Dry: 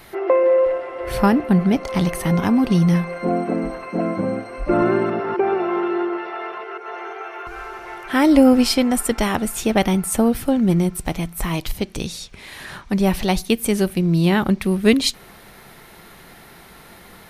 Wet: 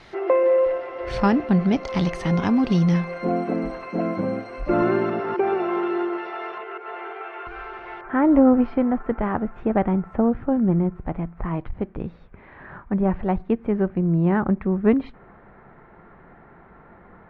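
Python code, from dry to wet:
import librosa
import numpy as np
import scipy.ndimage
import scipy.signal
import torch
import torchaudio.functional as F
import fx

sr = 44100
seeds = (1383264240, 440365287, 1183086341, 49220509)

y = fx.lowpass(x, sr, hz=fx.steps((0.0, 6000.0), (6.58, 3500.0), (8.01, 1600.0)), slope=24)
y = fx.transformer_sat(y, sr, knee_hz=190.0)
y = y * librosa.db_to_amplitude(-2.5)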